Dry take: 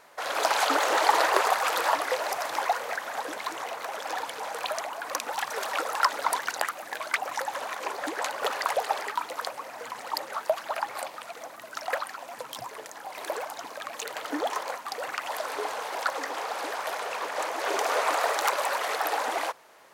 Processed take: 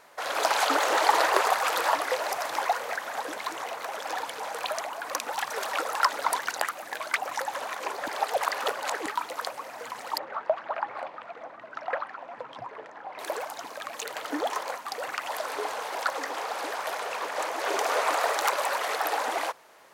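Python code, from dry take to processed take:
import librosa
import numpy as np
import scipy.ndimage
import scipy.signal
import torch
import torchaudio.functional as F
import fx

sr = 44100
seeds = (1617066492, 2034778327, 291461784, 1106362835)

y = fx.lowpass(x, sr, hz=2000.0, slope=12, at=(10.18, 13.19))
y = fx.edit(y, sr, fx.reverse_span(start_s=8.08, length_s=0.98), tone=tone)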